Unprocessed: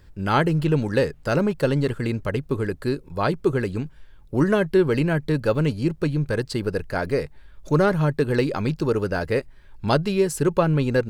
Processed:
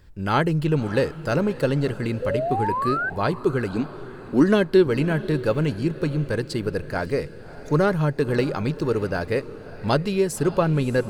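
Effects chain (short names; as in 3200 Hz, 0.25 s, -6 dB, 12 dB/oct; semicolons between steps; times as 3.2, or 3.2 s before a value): 2.22–3.1 painted sound rise 490–1600 Hz -24 dBFS; 3.7–4.87 graphic EQ 125/250/4000 Hz -9/+9/+8 dB; diffused feedback echo 0.59 s, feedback 43%, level -15.5 dB; gain -1 dB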